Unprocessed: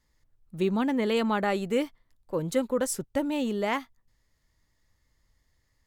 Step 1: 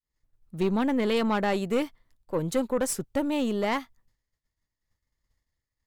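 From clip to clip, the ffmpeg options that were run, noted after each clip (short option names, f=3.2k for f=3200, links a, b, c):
-af "aeval=exprs='(tanh(11.2*val(0)+0.4)-tanh(0.4))/11.2':c=same,agate=range=-33dB:threshold=-60dB:ratio=3:detection=peak,volume=3dB"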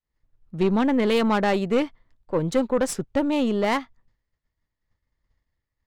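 -af "adynamicsmooth=sensitivity=5.5:basefreq=4k,volume=4.5dB"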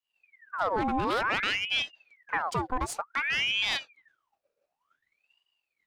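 -af "alimiter=limit=-18.5dB:level=0:latency=1:release=486,aeval=exprs='val(0)*sin(2*PI*1700*n/s+1700*0.7/0.55*sin(2*PI*0.55*n/s))':c=same,volume=1.5dB"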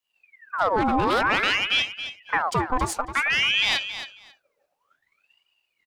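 -af "aecho=1:1:272|544:0.282|0.0451,volume=6dB"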